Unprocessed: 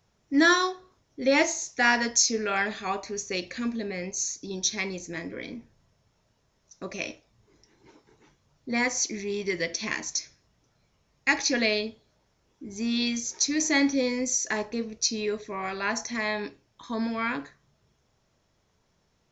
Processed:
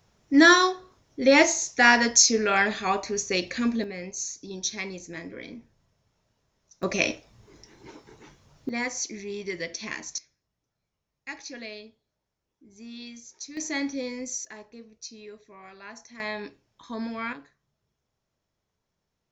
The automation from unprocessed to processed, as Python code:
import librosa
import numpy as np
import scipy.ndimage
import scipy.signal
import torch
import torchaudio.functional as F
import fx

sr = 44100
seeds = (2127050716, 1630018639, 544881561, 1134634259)

y = fx.gain(x, sr, db=fx.steps((0.0, 4.5), (3.84, -3.0), (6.83, 9.0), (8.69, -4.0), (10.18, -14.5), (13.57, -6.5), (14.45, -15.0), (16.2, -3.5), (17.33, -11.0)))